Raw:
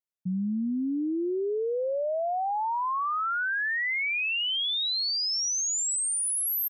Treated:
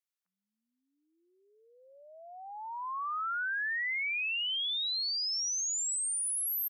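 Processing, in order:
brickwall limiter −30 dBFS, peak gain reduction 4.5 dB
high-pass filter 1,100 Hz 24 dB per octave

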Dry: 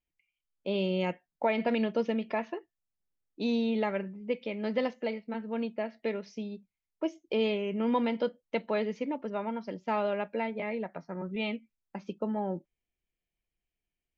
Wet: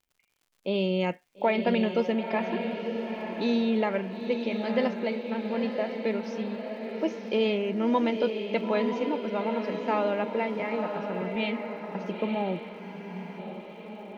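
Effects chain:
surface crackle 120 per second −57 dBFS
feedback delay with all-pass diffusion 934 ms, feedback 53%, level −6 dB
frozen spectrum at 0:12.81, 0.58 s
level +3 dB

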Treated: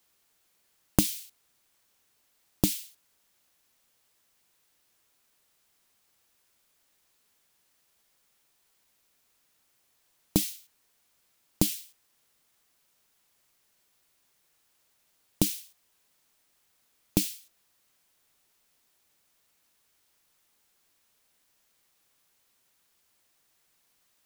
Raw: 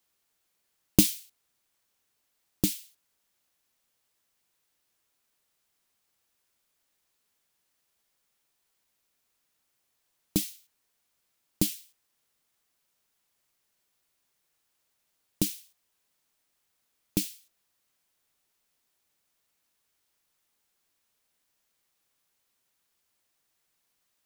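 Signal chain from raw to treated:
downward compressor 6 to 1, threshold −25 dBFS, peak gain reduction 11.5 dB
level +6 dB

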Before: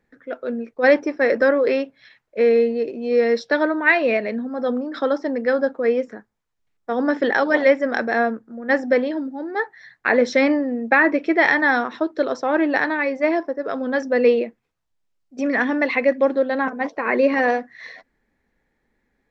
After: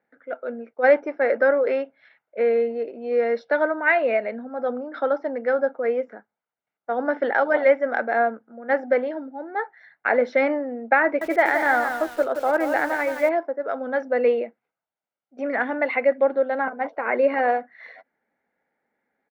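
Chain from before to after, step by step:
band-pass filter 320–2,000 Hz
comb filter 1.4 ms, depth 41%
0:11.04–0:13.29: feedback echo at a low word length 172 ms, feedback 35%, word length 6 bits, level −7 dB
level −1.5 dB

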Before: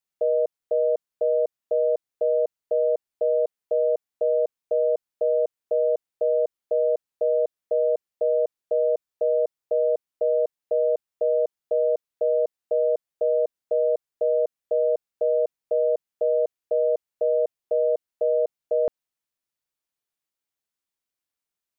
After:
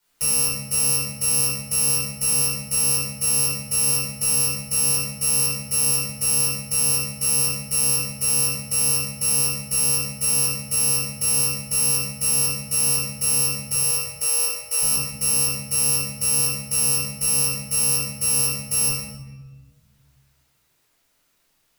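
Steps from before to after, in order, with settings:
samples in bit-reversed order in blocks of 128 samples
0:13.72–0:14.82: Butterworth high-pass 360 Hz 36 dB per octave
brickwall limiter −23 dBFS, peak gain reduction 10.5 dB
rectangular room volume 510 cubic metres, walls mixed, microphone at 4.7 metres
multiband upward and downward compressor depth 40%

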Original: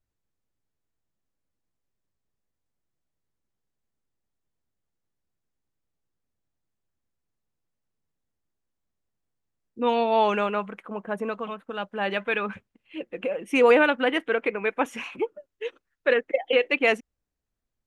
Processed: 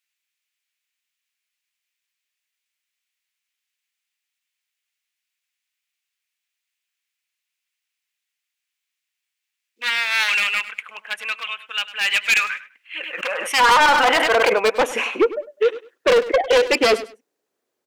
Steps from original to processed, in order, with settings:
wavefolder on the positive side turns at −21.5 dBFS
in parallel at +2.5 dB: speech leveller within 3 dB 2 s
on the sum: high-pass filter sweep 2,400 Hz → 400 Hz, 0:12.21–0:15.21
soft clipping −15 dBFS, distortion −9 dB
on a send: repeating echo 101 ms, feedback 20%, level −15.5 dB
0:12.97–0:14.58: on the sum: level that may fall only so fast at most 22 dB per second
level +4 dB

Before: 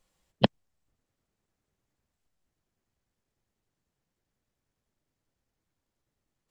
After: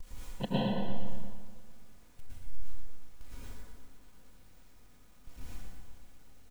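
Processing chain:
converter with a step at zero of −26 dBFS
noise reduction from a noise print of the clip's start 23 dB
noise gate with hold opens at −46 dBFS
low-shelf EQ 75 Hz +12 dB
comb filter 4.1 ms, depth 44%
downward compressor 3 to 1, threshold −41 dBFS, peak gain reduction 20.5 dB
on a send: repeating echo 77 ms, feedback 34%, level −16 dB
on the sum: dense smooth reverb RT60 1.7 s, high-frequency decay 0.6×, pre-delay 95 ms, DRR −10 dB
feedback echo at a low word length 118 ms, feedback 55%, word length 10 bits, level −9 dB

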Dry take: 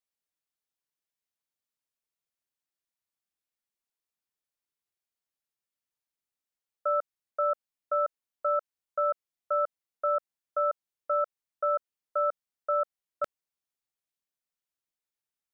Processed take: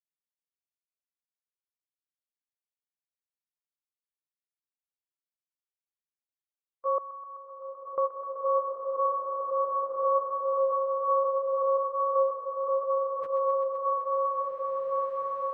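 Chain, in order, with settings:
partials spread apart or drawn together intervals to 90%
0:06.98–0:07.98: linear-phase brick-wall band-stop 150–1,600 Hz
noise gate with hold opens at −44 dBFS
bass and treble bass 0 dB, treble −15 dB
delay with a high-pass on its return 128 ms, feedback 85%, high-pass 1,400 Hz, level −7 dB
slow-attack reverb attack 2,160 ms, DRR −4.5 dB

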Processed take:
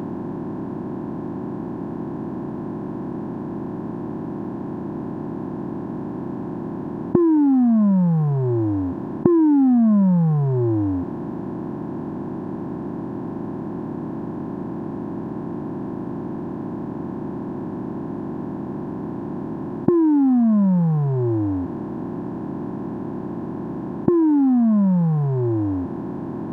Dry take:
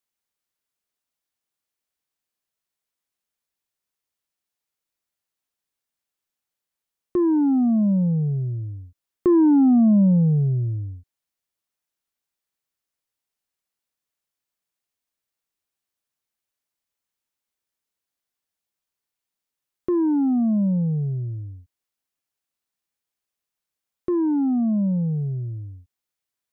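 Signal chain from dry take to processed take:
compressor on every frequency bin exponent 0.2
level −2 dB

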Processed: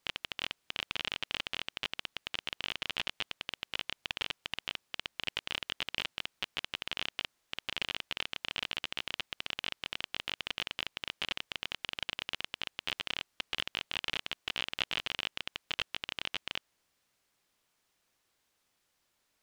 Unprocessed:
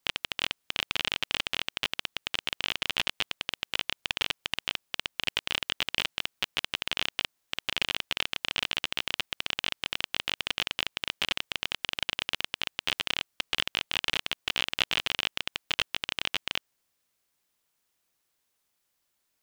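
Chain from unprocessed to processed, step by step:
mu-law and A-law mismatch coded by mu
high-shelf EQ 9,300 Hz −11 dB
level −6 dB

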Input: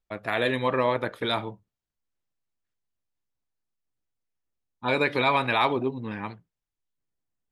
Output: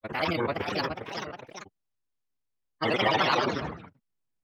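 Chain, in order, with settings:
granular cloud, pitch spread up and down by 7 semitones
phase-vocoder stretch with locked phases 0.59×
delay with pitch and tempo change per echo 473 ms, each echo +2 semitones, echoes 2, each echo −6 dB

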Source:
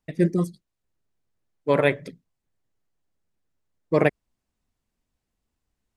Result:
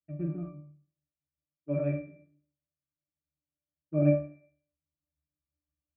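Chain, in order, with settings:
peak hold with a decay on every bin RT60 0.56 s
high-pass filter 68 Hz
in parallel at −5 dB: centre clipping without the shift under −21.5 dBFS
on the sum: low-pass filter 2,600 Hz 24 dB per octave
notch filter 1,200 Hz, Q 16
resonances in every octave D, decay 0.38 s

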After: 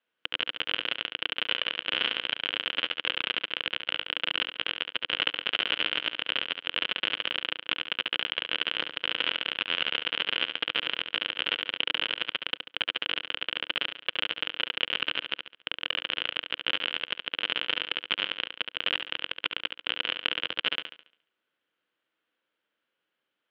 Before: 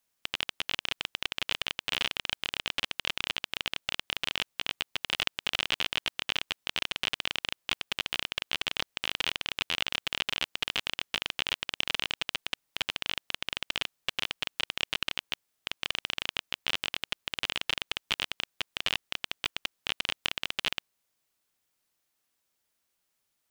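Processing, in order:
loudspeaker in its box 180–3,100 Hz, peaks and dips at 310 Hz +5 dB, 500 Hz +7 dB, 780 Hz −4 dB, 1,500 Hz +7 dB, 3,100 Hz +7 dB
on a send: flutter between parallel walls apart 12 metres, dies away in 0.56 s

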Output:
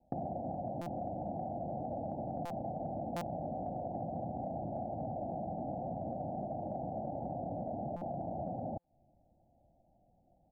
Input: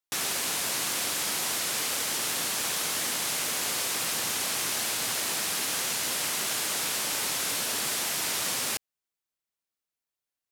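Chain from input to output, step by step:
bit-depth reduction 12 bits, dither triangular
Butterworth low-pass 770 Hz 96 dB per octave
comb filter 1.2 ms, depth 84%
downward compressor 16 to 1, threshold −51 dBFS, peak gain reduction 15 dB
buffer that repeats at 0:00.81/0:02.45/0:03.16/0:07.96/0:08.79, samples 256, times 8
level +15.5 dB

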